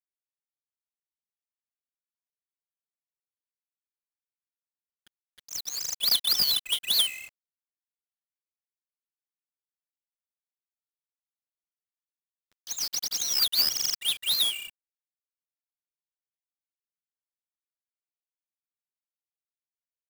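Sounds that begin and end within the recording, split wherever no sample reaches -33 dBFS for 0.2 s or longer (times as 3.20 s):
5.53–7.09 s
12.70–14.57 s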